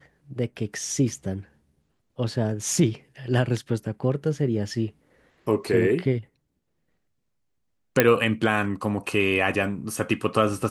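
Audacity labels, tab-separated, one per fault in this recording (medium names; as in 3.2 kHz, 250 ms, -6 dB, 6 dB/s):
8.000000	8.000000	pop -2 dBFS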